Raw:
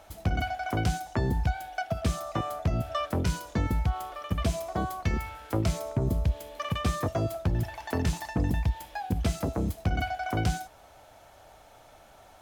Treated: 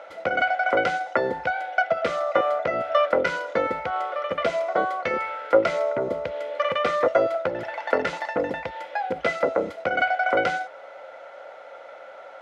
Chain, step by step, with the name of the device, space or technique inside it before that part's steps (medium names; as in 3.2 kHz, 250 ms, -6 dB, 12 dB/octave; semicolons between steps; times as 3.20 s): tin-can telephone (band-pass 480–3000 Hz; small resonant body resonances 530/1400/2000 Hz, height 17 dB, ringing for 50 ms); trim +7.5 dB